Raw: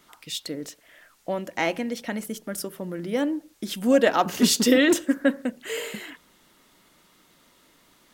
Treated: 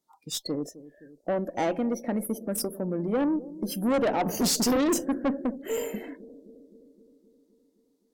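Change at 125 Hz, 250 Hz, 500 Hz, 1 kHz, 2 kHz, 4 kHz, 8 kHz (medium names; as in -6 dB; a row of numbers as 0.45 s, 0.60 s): +1.0 dB, -3.0 dB, -3.5 dB, -2.5 dB, -10.5 dB, -5.5 dB, -1.5 dB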